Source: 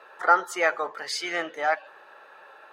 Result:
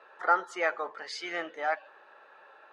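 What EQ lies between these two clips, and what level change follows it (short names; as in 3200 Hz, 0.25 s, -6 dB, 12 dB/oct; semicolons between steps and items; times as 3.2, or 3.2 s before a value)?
brick-wall FIR high-pass 150 Hz; air absorption 87 m; -5.0 dB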